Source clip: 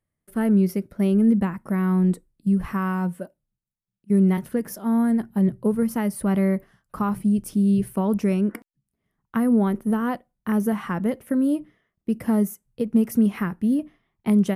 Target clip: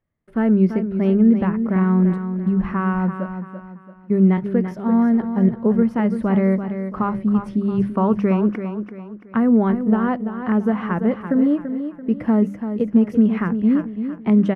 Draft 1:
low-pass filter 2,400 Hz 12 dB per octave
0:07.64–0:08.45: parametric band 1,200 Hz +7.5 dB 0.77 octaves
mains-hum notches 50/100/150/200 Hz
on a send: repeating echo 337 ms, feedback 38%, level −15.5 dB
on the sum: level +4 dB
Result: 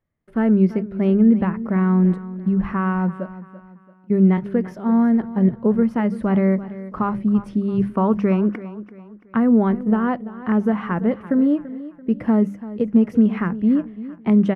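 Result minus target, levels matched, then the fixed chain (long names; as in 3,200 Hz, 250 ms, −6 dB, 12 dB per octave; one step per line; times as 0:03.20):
echo-to-direct −6.5 dB
low-pass filter 2,400 Hz 12 dB per octave
0:07.64–0:08.45: parametric band 1,200 Hz +7.5 dB 0.77 octaves
mains-hum notches 50/100/150/200 Hz
on a send: repeating echo 337 ms, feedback 38%, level −9 dB
on the sum: level +4 dB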